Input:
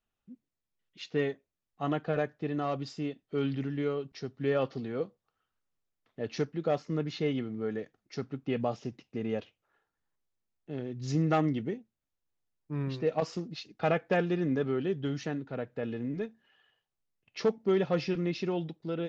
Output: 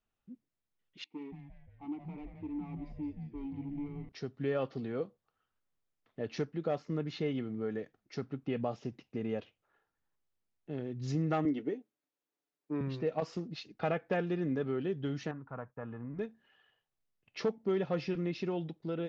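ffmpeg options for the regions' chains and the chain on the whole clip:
-filter_complex "[0:a]asettb=1/sr,asplit=3[a][b][c];[a]atrim=end=1.044[d];[b]atrim=start=1.04:end=4.09,asetpts=PTS-STARTPTS,afade=t=in:d=0.004:c=qsin,afade=t=out:st=3.046:d=0.004:c=qsin,asoftclip=type=hard:threshold=-30dB,asplit=3[e][f][g];[e]bandpass=f=300:t=q:w=8,volume=0dB[h];[f]bandpass=f=870:t=q:w=8,volume=-6dB[i];[g]bandpass=f=2.24k:t=q:w=8,volume=-9dB[j];[h][i][j]amix=inputs=3:normalize=0,asplit=8[k][l][m][n][o][p][q][r];[l]adelay=174,afreqshift=-130,volume=-6dB[s];[m]adelay=348,afreqshift=-260,volume=-11.2dB[t];[n]adelay=522,afreqshift=-390,volume=-16.4dB[u];[o]adelay=696,afreqshift=-520,volume=-21.6dB[v];[p]adelay=870,afreqshift=-650,volume=-26.8dB[w];[q]adelay=1044,afreqshift=-780,volume=-32dB[x];[r]adelay=1218,afreqshift=-910,volume=-37.2dB[y];[k][s][t][u][v][w][x][y]amix=inputs=8:normalize=0,atrim=end_sample=134505[z];[c]atrim=start=4.086[aa];[d][z]acrossfade=d=0.004:c1=hsin:c2=qsin[ab];[ab][aa]acrossfade=d=0.004:c1=qsin:c2=hsin,asettb=1/sr,asplit=3[ac][ad][ae];[ac]atrim=end=11.454[af];[ad]atrim=start=11.45:end=12.81,asetpts=PTS-STARTPTS,afade=t=in:d=0.004:c=qsin,afade=t=out:st=1.356:d=0.004:c=qsin,highpass=f=310:t=q:w=1.6,aecho=1:1:6.9:0.44,atrim=end_sample=59976[ag];[ae]atrim=start=12.806[ah];[af][ag]acrossfade=d=0.004:c1=hsin:c2=qsin[ai];[ai][ah]acrossfade=d=0.004:c1=qsin:c2=hsin,asettb=1/sr,asplit=3[aj][ak][al];[aj]atrim=end=15.314[am];[ak]atrim=start=15.31:end=16.19,asetpts=PTS-STARTPTS,afade=t=in:d=0.004:c=qsin,afade=t=out:st=0.876:d=0.004:c=qsin,agate=range=-33dB:threshold=-52dB:ratio=3:release=100:detection=peak,lowpass=f=1.1k:t=q:w=3.7,equalizer=f=390:w=0.6:g=-12.5[an];[al]atrim=start=16.186[ao];[am][an]acrossfade=d=0.004:c1=hsin:c2=qsin[ap];[ap][ao]acrossfade=d=0.004:c1=qsin:c2=hsin,highshelf=f=5.1k:g=-8,acompressor=threshold=-36dB:ratio=1.5"

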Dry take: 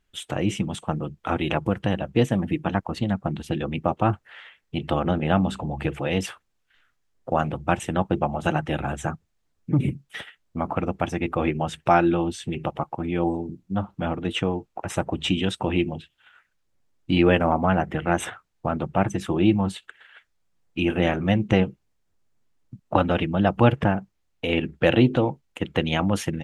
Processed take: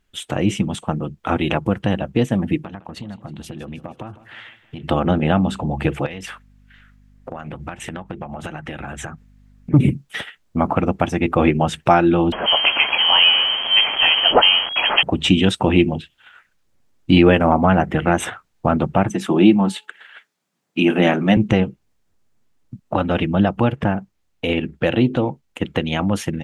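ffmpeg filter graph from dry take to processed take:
-filter_complex "[0:a]asettb=1/sr,asplit=3[a][b][c];[a]atrim=end=2.604[d];[b]atrim=start=2.6:end=4.84,asetpts=PTS-STARTPTS,afade=t=in:d=0.004:c=qsin,afade=t=out:st=2.236:d=0.004:c=qsin,acompressor=threshold=-34dB:ratio=10:attack=3.2:release=140:knee=1:detection=peak,aecho=1:1:158|316|474|632|790:0.141|0.0777|0.0427|0.0235|0.0129,atrim=end_sample=98784[e];[c]atrim=start=4.836[f];[d][e]acrossfade=d=0.004:c1=hsin:c2=qsin[g];[g][f]acrossfade=d=0.004:c1=qsin:c2=hsin,asettb=1/sr,asplit=3[h][i][j];[h]atrim=end=6.064[k];[i]atrim=start=6.06:end=9.74,asetpts=PTS-STARTPTS,afade=t=in:d=0.004:c=qsin,afade=t=out:st=3.676:d=0.004:c=qsin,equalizer=f=1.9k:t=o:w=1.2:g=7,acompressor=threshold=-34dB:ratio=12:attack=3.2:release=140:knee=1:detection=peak,aeval=exprs='val(0)+0.00141*(sin(2*PI*50*n/s)+sin(2*PI*2*50*n/s)/2+sin(2*PI*3*50*n/s)/3+sin(2*PI*4*50*n/s)/4+sin(2*PI*5*50*n/s)/5)':c=same[l];[j]atrim=start=9.736[m];[k][l]acrossfade=d=0.004:c1=hsin:c2=qsin[n];[n][m]acrossfade=d=0.004:c1=qsin:c2=hsin,asettb=1/sr,asplit=3[o][p][q];[o]atrim=end=12.324[r];[p]atrim=start=12.32:end=15.03,asetpts=PTS-STARTPTS,afade=t=in:d=0.004:c=qsin,afade=t=out:st=2.706:d=0.004:c=qsin,aeval=exprs='val(0)+0.5*0.0501*sgn(val(0))':c=same,equalizer=f=2.5k:t=o:w=0.57:g=10.5,lowpass=f=2.8k:t=q:w=0.5098,lowpass=f=2.8k:t=q:w=0.6013,lowpass=f=2.8k:t=q:w=0.9,lowpass=f=2.8k:t=q:w=2.563,afreqshift=-3300[s];[q]atrim=start=15.026[t];[r][s]acrossfade=d=0.004:c1=hsin:c2=qsin[u];[u][t]acrossfade=d=0.004:c1=qsin:c2=hsin,asettb=1/sr,asplit=3[v][w][x];[v]atrim=end=19.104[y];[w]atrim=start=19.1:end=21.37,asetpts=PTS-STARTPTS,afade=t=in:d=0.004:c=qsin,afade=t=out:st=2.266:d=0.004:c=qsin,highpass=f=160:w=0.5412,highpass=f=160:w=1.3066,bandreject=f=500:w=15,bandreject=f=427.8:t=h:w=4,bandreject=f=855.6:t=h:w=4[z];[x]atrim=start=21.366[aa];[y][z]acrossfade=d=0.004:c1=hsin:c2=qsin[ab];[ab][aa]acrossfade=d=0.004:c1=qsin:c2=hsin,equalizer=f=230:t=o:w=0.44:g=3,alimiter=limit=-9.5dB:level=0:latency=1:release=354,dynaudnorm=f=940:g=13:m=3.5dB,volume=4.5dB"

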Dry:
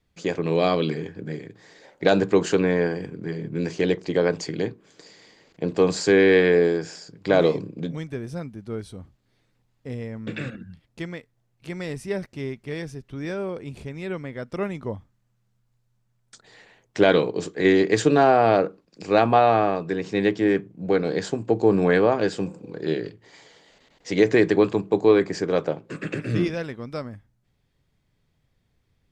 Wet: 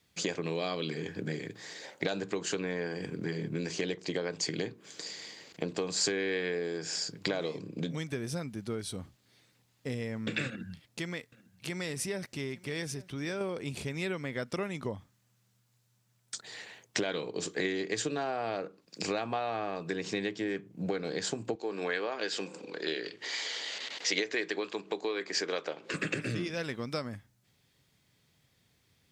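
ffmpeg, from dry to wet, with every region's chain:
-filter_complex "[0:a]asettb=1/sr,asplit=3[a][b][c];[a]atrim=end=10.474[d];[b]atrim=start=10.47:end=13.41,asetpts=PTS-STARTPTS,afade=t=in:d=0.004:c=qsin,afade=t=out:st=2.936:d=0.004:c=qsin,acompressor=threshold=-36dB:ratio=2:attack=3.2:release=140:knee=1:detection=peak,aecho=1:1:851:0.0841,atrim=end_sample=129654[e];[c]atrim=start=13.406[f];[d][e]acrossfade=d=0.004:c1=hsin:c2=qsin[g];[g][f]acrossfade=d=0.004:c1=qsin:c2=hsin,asettb=1/sr,asplit=3[h][i][j];[h]atrim=end=21.554[k];[i]atrim=start=21.55:end=25.94,asetpts=PTS-STARTPTS,afade=t=in:d=0.004:c=qsin,afade=t=out:st=4.386:d=0.004:c=qsin,equalizer=f=710:t=o:w=1.8:g=-5.5,acompressor=mode=upward:threshold=-29dB:ratio=2.5:attack=3.2:release=140:knee=2.83:detection=peak,highpass=440,lowpass=5.5k[l];[j]atrim=start=25.936[m];[k][l]acrossfade=d=0.004:c1=hsin:c2=qsin[n];[n][m]acrossfade=d=0.004:c1=qsin:c2=hsin,acompressor=threshold=-31dB:ratio=10,highpass=94,highshelf=f=2.1k:g=11"

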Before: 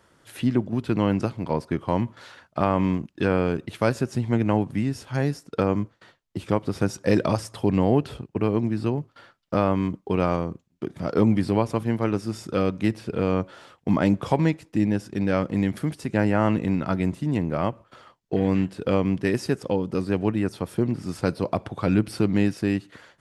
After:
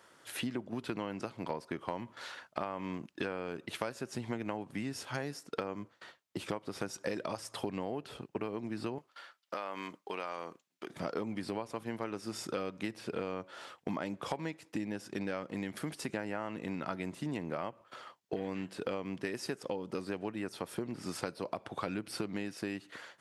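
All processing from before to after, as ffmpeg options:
-filter_complex "[0:a]asettb=1/sr,asplit=3[a][b][c];[a]atrim=end=8.984[d];[b]atrim=start=8.98:end=10.9,asetpts=PTS-STARTPTS,afade=t=in:d=0.004:c=qsin,afade=t=out:st=1.916:d=0.004:c=qsin,highpass=f=1k:p=1,acompressor=threshold=-31dB:ratio=3:attack=3.2:release=140:knee=1:detection=peak[e];[c]atrim=start=10.896[f];[d][e]acrossfade=d=0.004:c1=hsin:c2=qsin[g];[g][f]acrossfade=d=0.004:c1=qsin:c2=hsin,highpass=f=520:p=1,acompressor=threshold=-34dB:ratio=10,volume=1dB"

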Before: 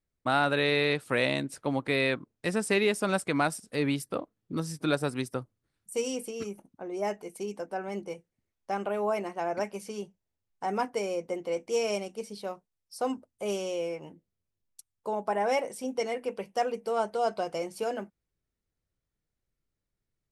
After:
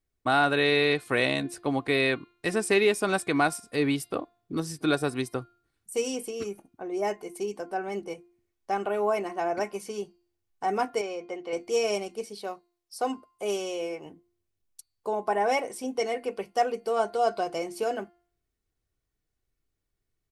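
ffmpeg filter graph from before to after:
-filter_complex "[0:a]asettb=1/sr,asplit=3[a][b][c];[a]atrim=end=11.014[d];[b]atrim=start=11.01:end=11.53,asetpts=PTS-STARTPTS,afade=t=in:d=0.004:c=qsin,afade=t=out:st=0.516:d=0.004:c=qsin,lowpass=4.7k,lowshelf=f=370:g=-9.5[e];[c]atrim=start=11.526[f];[d][e]acrossfade=d=0.004:c1=hsin:c2=qsin[g];[g][f]acrossfade=d=0.004:c1=qsin:c2=hsin,asettb=1/sr,asplit=3[h][i][j];[h]atrim=end=12.244[k];[i]atrim=start=12.24:end=14.06,asetpts=PTS-STARTPTS,afade=t=in:d=0.004:c=qsin,afade=t=out:st=1.816:d=0.004:c=qsin,lowshelf=f=150:g=-9,asoftclip=type=hard:threshold=-21dB[l];[j]atrim=start=14.056[m];[k][l]acrossfade=d=0.004:c1=hsin:c2=qsin[n];[n][m]acrossfade=d=0.004:c1=qsin:c2=hsin,aecho=1:1:2.7:0.36,bandreject=f=349.3:t=h:w=4,bandreject=f=698.6:t=h:w=4,bandreject=f=1.0479k:t=h:w=4,bandreject=f=1.3972k:t=h:w=4,bandreject=f=1.7465k:t=h:w=4,bandreject=f=2.0958k:t=h:w=4,bandreject=f=2.4451k:t=h:w=4,bandreject=f=2.7944k:t=h:w=4,bandreject=f=3.1437k:t=h:w=4,bandreject=f=3.493k:t=h:w=4,bandreject=f=3.8423k:t=h:w=4,bandreject=f=4.1916k:t=h:w=4,bandreject=f=4.5409k:t=h:w=4,bandreject=f=4.8902k:t=h:w=4,volume=2dB"

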